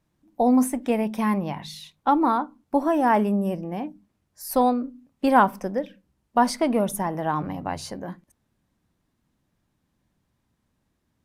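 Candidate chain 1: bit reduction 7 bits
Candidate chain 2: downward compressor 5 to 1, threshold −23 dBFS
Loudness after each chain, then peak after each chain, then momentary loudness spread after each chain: −23.5, −29.5 LKFS; −5.5, −12.0 dBFS; 15, 11 LU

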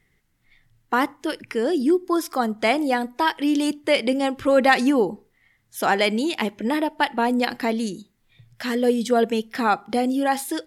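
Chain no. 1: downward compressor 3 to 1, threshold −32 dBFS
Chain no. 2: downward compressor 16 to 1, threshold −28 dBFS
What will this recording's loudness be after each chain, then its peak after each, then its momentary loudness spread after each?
−33.0, −33.0 LKFS; −16.0, −15.0 dBFS; 5, 4 LU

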